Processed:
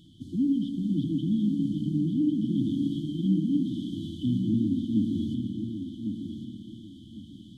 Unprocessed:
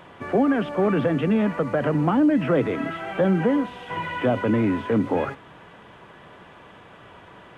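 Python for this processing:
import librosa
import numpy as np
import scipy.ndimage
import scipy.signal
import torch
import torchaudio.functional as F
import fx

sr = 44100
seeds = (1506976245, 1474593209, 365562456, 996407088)

y = fx.brickwall_bandstop(x, sr, low_hz=340.0, high_hz=3000.0)
y = fx.rev_spring(y, sr, rt60_s=2.4, pass_ms=(57,), chirp_ms=50, drr_db=5.5)
y = fx.rider(y, sr, range_db=4, speed_s=0.5)
y = fx.echo_feedback(y, sr, ms=1099, feedback_pct=26, wet_db=-7.0)
y = F.gain(torch.from_numpy(y), -4.0).numpy()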